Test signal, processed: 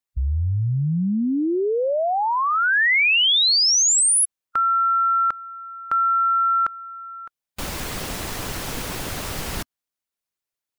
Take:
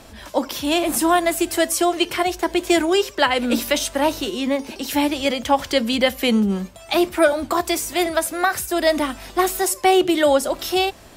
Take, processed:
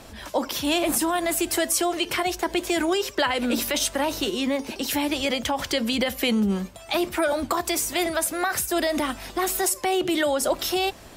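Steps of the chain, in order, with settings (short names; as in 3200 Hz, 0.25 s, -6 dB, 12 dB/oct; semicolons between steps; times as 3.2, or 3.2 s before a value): limiter -13.5 dBFS; harmonic-percussive split harmonic -4 dB; gain +1.5 dB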